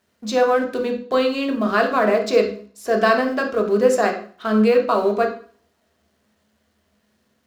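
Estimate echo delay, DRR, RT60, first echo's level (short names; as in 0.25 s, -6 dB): none, 2.0 dB, 0.45 s, none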